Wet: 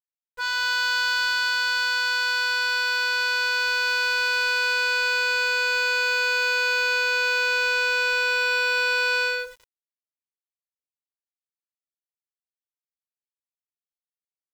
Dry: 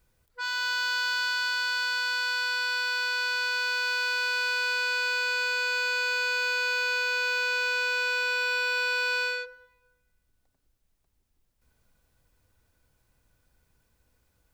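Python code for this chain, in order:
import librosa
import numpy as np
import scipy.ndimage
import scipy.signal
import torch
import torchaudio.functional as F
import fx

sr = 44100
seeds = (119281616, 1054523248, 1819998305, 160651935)

y = fx.low_shelf(x, sr, hz=270.0, db=7.0)
y = np.where(np.abs(y) >= 10.0 ** (-47.5 / 20.0), y, 0.0)
y = y * 10.0 ** (4.5 / 20.0)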